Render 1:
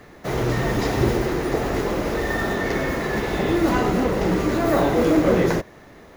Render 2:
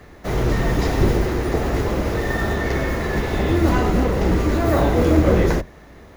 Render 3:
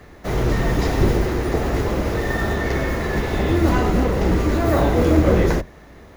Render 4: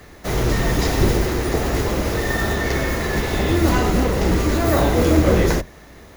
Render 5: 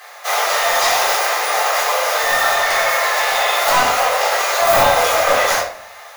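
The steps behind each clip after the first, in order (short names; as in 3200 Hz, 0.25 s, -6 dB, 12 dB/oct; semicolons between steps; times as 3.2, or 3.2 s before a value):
octaver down 2 oct, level +3 dB
nothing audible
high shelf 3400 Hz +9.5 dB
steep high-pass 580 Hz 48 dB/oct; wavefolder -18 dBFS; shoebox room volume 480 m³, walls furnished, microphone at 3.8 m; gain +5 dB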